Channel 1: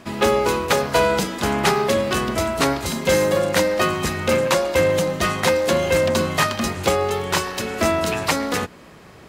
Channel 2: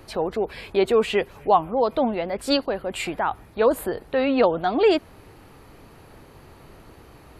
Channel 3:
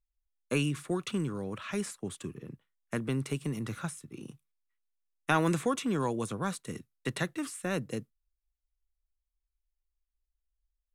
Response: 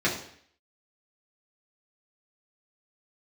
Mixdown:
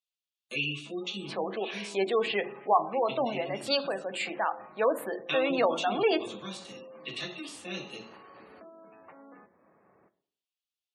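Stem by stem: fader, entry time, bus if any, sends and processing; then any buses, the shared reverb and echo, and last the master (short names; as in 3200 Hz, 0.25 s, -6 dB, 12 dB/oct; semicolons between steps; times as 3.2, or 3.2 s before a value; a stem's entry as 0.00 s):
-13.5 dB, 0.80 s, bus A, send -22.5 dB, Bessel low-pass 980 Hz, order 2; compressor 2.5:1, threshold -33 dBFS, peak gain reduction 12 dB
-6.0 dB, 1.20 s, no bus, send -19 dB, dry
-10.5 dB, 0.00 s, bus A, send -8.5 dB, resonant high shelf 2300 Hz +9 dB, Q 3
bus A: 0.0 dB, bell 4900 Hz -5.5 dB 2.4 oct; compressor 6:1, threshold -48 dBFS, peak gain reduction 15.5 dB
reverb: on, RT60 0.60 s, pre-delay 3 ms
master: weighting filter A; spectral gate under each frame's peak -25 dB strong; low shelf 120 Hz +8.5 dB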